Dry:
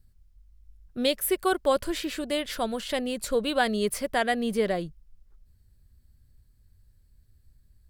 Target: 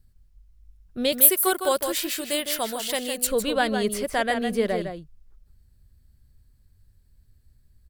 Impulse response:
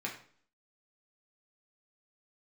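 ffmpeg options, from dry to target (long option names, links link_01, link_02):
-filter_complex "[0:a]asettb=1/sr,asplit=3[link_01][link_02][link_03];[link_01]atrim=end=1.124[link_04];[link_02]atrim=start=1.12:end=3.27,asetpts=PTS-STARTPTS,afade=type=in:duration=0.004:curve=qsin,afade=type=out:start_time=2.146:duration=0.004:curve=qsin,aemphasis=mode=production:type=bsi[link_05];[link_03]atrim=start=3.266[link_06];[link_04][link_05]acrossfade=duration=0.004:curve1=hsin:curve2=qsin[link_07];[link_07][link_06]acrossfade=duration=0.004:curve1=qsin:curve2=hsin,asplit=2[link_08][link_09];[link_09]adelay=157.4,volume=-7dB,highshelf=frequency=4000:gain=-3.54[link_10];[link_08][link_10]amix=inputs=2:normalize=0,volume=1dB"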